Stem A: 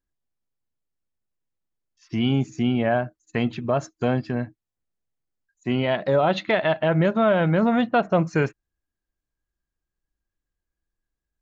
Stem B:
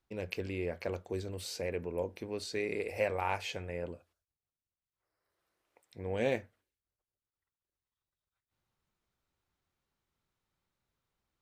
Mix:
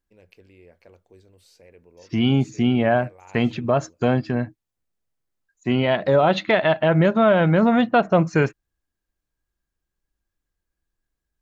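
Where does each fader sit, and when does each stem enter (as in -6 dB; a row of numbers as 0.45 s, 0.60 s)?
+3.0 dB, -14.5 dB; 0.00 s, 0.00 s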